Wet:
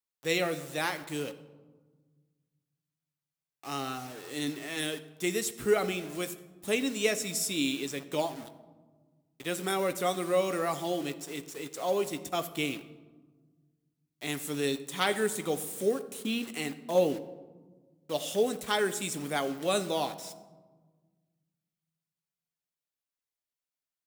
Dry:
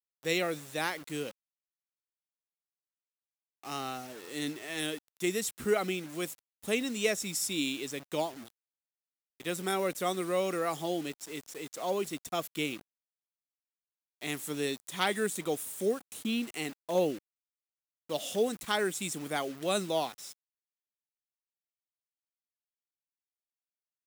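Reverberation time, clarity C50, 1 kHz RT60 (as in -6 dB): 1.4 s, 14.0 dB, 1.3 s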